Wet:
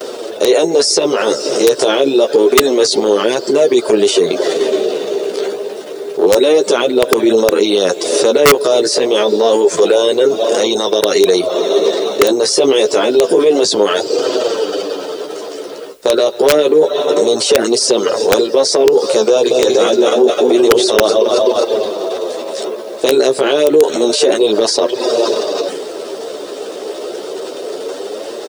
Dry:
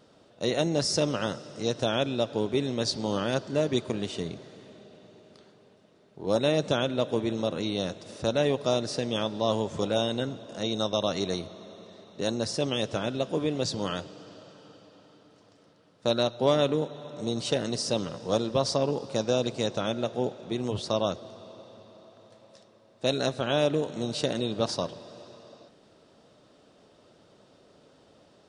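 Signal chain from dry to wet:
0:19.34–0:21.64: feedback delay that plays each chunk backwards 126 ms, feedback 60%, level −3 dB
noise gate with hold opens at −52 dBFS
reverb reduction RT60 0.51 s
high-shelf EQ 6,000 Hz +11 dB
transient designer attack −10 dB, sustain +8 dB
downward compressor 6 to 1, threshold −42 dBFS, peak gain reduction 21 dB
high-pass with resonance 410 Hz, resonance Q 4.7
background noise white −80 dBFS
flanger 0.28 Hz, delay 7.7 ms, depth 7.9 ms, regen +9%
wrap-around overflow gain 29.5 dB
far-end echo of a speakerphone 270 ms, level −26 dB
boost into a limiter +33 dB
level −1 dB

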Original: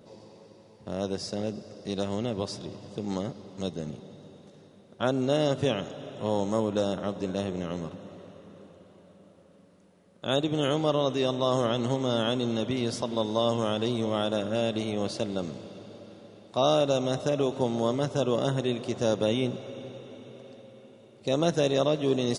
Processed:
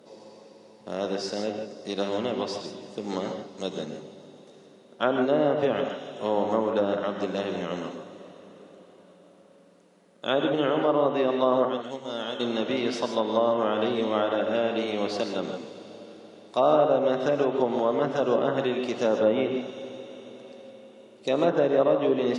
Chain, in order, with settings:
dynamic equaliser 1,700 Hz, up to +4 dB, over −44 dBFS, Q 0.75
0:11.65–0:12.40: downward expander −17 dBFS
high-pass filter 250 Hz 12 dB per octave
treble cut that deepens with the level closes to 1,400 Hz, closed at −21 dBFS
reverb whose tail is shaped and stops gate 180 ms rising, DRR 4.5 dB
level +2 dB

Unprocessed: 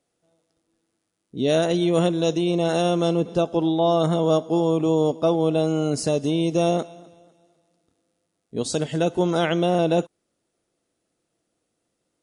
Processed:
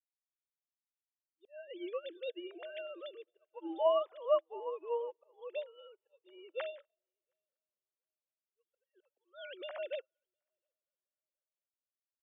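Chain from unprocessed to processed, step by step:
three sine waves on the formant tracks
dynamic equaliser 1,600 Hz, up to +5 dB, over −35 dBFS, Q 0.91
volume swells 301 ms
high-pass filter 880 Hz 6 dB per octave
on a send: echo machine with several playback heads 239 ms, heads first and third, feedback 42%, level −22 dB
on the sum: expander for the loud parts 2.5 to 1, over −46 dBFS
level −5 dB

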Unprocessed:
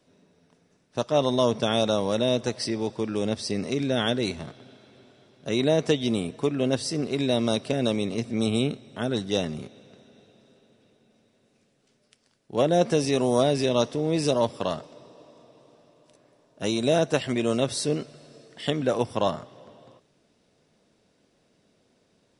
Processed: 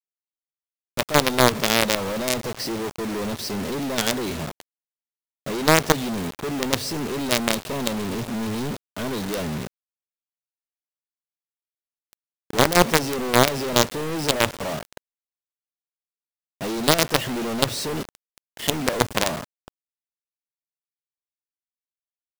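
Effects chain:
low-pass filter 3,400 Hz 6 dB per octave
log-companded quantiser 2 bits
level −1 dB

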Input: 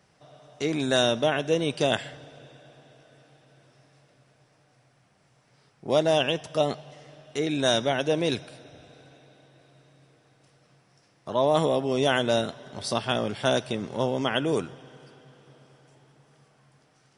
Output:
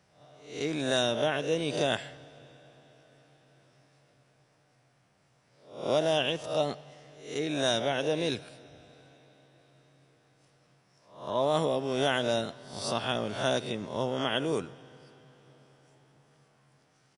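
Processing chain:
peak hold with a rise ahead of every peak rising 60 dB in 0.51 s
far-end echo of a speakerphone 110 ms, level −23 dB
level −5.5 dB

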